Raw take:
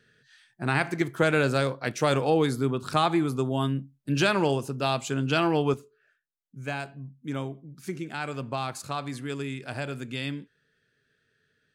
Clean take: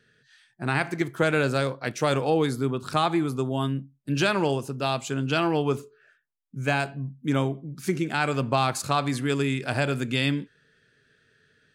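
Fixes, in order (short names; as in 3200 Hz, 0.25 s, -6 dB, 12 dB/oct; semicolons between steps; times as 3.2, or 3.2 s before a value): gain 0 dB, from 5.74 s +8 dB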